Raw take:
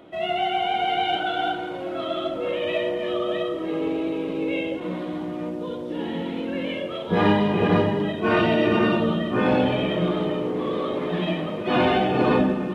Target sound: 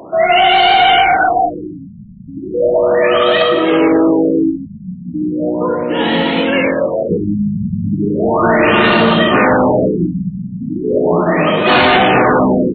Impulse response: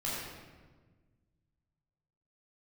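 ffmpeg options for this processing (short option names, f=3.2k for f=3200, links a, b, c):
-filter_complex "[0:a]aresample=16000,asoftclip=type=hard:threshold=-20.5dB,aresample=44100,highpass=46,tiltshelf=f=930:g=-7,asoftclip=type=tanh:threshold=-19.5dB,highshelf=f=3.2k:g=-9,bandreject=f=60:t=h:w=6,bandreject=f=120:t=h:w=6,bandreject=f=180:t=h:w=6,bandreject=f=240:t=h:w=6,bandreject=f=300:t=h:w=6,bandreject=f=360:t=h:w=6,asplit=2[a][b];[b]aecho=0:1:173:0.237[c];[a][c]amix=inputs=2:normalize=0,alimiter=level_in=21.5dB:limit=-1dB:release=50:level=0:latency=1,afftfilt=real='re*lt(b*sr/1024,220*pow(4600/220,0.5+0.5*sin(2*PI*0.36*pts/sr)))':imag='im*lt(b*sr/1024,220*pow(4600/220,0.5+0.5*sin(2*PI*0.36*pts/sr)))':win_size=1024:overlap=0.75,volume=-1.5dB"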